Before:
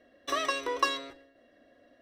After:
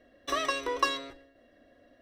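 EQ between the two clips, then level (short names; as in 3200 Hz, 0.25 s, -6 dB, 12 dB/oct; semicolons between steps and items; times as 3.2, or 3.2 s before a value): low shelf 95 Hz +11 dB; 0.0 dB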